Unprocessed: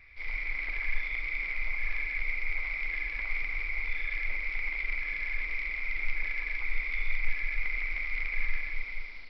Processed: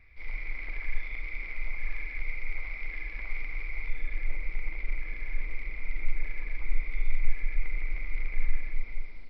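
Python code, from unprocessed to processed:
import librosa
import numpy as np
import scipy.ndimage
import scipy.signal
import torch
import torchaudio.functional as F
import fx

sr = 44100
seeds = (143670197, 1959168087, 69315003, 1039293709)

y = fx.tilt_shelf(x, sr, db=fx.steps((0.0, 5.5), (3.89, 9.5)), hz=800.0)
y = y * librosa.db_to_amplitude(-2.5)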